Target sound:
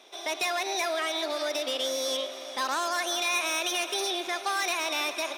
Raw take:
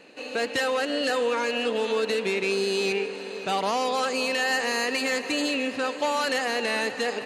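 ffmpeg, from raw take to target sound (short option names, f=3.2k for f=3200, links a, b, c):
-af "highpass=230,asetrate=59535,aresample=44100,equalizer=f=600:w=0.92:g=-4,volume=-1.5dB"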